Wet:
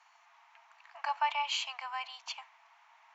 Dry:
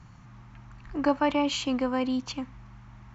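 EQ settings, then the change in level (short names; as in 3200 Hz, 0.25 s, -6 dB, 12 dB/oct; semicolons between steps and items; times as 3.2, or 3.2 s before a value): rippled Chebyshev high-pass 650 Hz, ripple 6 dB; 0.0 dB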